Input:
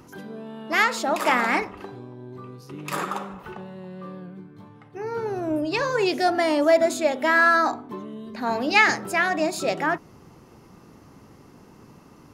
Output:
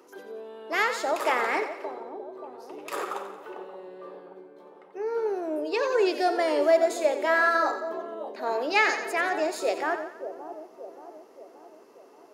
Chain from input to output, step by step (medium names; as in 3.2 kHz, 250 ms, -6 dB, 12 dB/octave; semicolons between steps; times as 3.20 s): ladder high-pass 360 Hz, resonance 50%; on a send: two-band feedback delay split 890 Hz, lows 578 ms, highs 89 ms, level -10 dB; on the sum: trim +3.5 dB